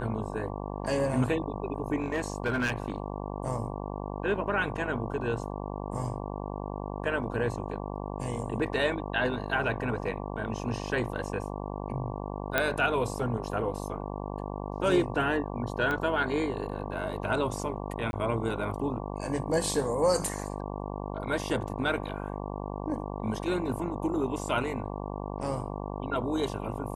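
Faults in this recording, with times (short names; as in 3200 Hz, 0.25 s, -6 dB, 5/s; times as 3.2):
buzz 50 Hz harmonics 23 -36 dBFS
2–3.16 clipped -23.5 dBFS
12.58 pop -10 dBFS
15.91 pop -18 dBFS
18.11–18.13 gap 21 ms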